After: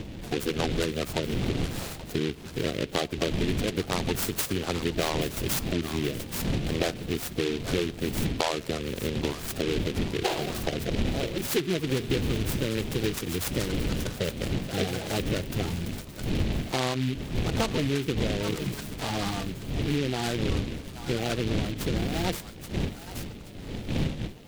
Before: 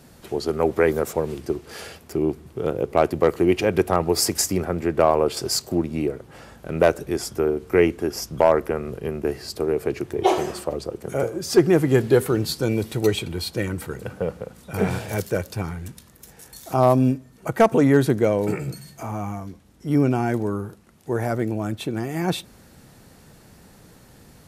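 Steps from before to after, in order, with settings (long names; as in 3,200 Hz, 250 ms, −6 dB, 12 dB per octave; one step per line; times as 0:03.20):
spectral magnitudes quantised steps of 30 dB
wind on the microphone 230 Hz −26 dBFS
on a send: delay with a high-pass on its return 828 ms, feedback 32%, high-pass 1,400 Hz, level −9 dB
on the sum: downward compressor, threshold −24 dBFS, peak gain reduction 13.5 dB
short delay modulated by noise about 2,600 Hz, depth 0.14 ms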